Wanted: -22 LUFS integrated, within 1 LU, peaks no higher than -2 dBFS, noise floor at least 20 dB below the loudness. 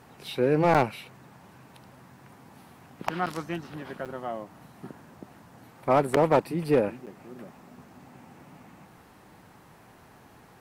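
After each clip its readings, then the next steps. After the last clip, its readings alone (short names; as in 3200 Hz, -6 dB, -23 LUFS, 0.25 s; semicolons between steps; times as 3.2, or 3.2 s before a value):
clipped 0.2%; flat tops at -13.5 dBFS; dropouts 5; longest dropout 7.5 ms; loudness -27.0 LUFS; peak -13.5 dBFS; loudness target -22.0 LUFS
-> clip repair -13.5 dBFS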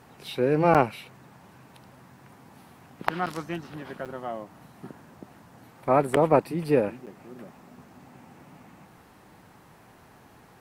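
clipped 0.0%; dropouts 5; longest dropout 7.5 ms
-> interpolate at 0.74/3.26/4.05/6.16/7.06, 7.5 ms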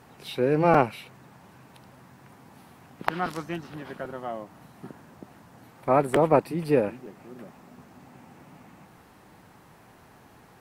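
dropouts 0; loudness -26.0 LUFS; peak -4.5 dBFS; loudness target -22.0 LUFS
-> gain +4 dB; limiter -2 dBFS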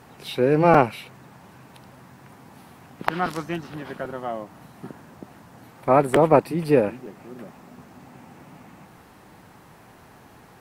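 loudness -22.0 LUFS; peak -2.0 dBFS; noise floor -50 dBFS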